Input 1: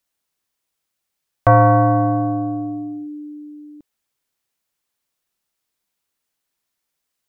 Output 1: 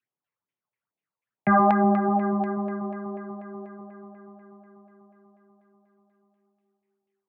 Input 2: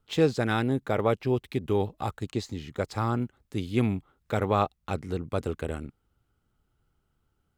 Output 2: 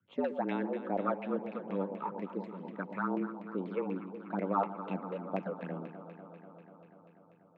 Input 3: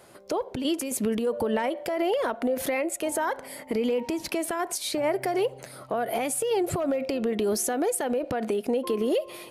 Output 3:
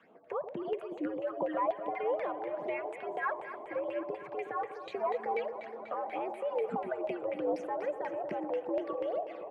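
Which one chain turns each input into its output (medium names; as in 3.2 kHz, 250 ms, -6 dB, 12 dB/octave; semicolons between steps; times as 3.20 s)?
phase shifter stages 8, 2.3 Hz, lowest notch 170–1600 Hz; frequency shift +92 Hz; echo whose repeats swap between lows and highs 122 ms, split 910 Hz, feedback 86%, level -10 dB; LFO low-pass saw down 4.1 Hz 780–2300 Hz; trim -7 dB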